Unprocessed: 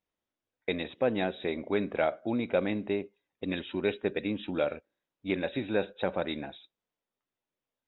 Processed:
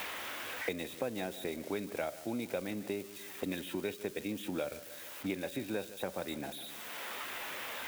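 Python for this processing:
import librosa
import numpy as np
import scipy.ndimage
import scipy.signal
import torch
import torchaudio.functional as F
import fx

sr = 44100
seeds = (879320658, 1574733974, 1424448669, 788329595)

y = x + 0.5 * 10.0 ** (-31.5 / 20.0) * np.diff(np.sign(x), prepend=np.sign(x[:1]))
y = fx.echo_feedback(y, sr, ms=150, feedback_pct=38, wet_db=-18.0)
y = fx.band_squash(y, sr, depth_pct=100)
y = y * 10.0 ** (-7.5 / 20.0)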